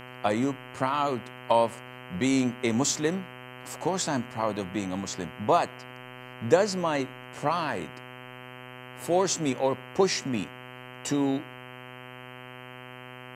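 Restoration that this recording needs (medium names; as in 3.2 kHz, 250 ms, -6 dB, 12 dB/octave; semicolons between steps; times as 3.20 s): de-hum 125.8 Hz, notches 25; expander -37 dBFS, range -21 dB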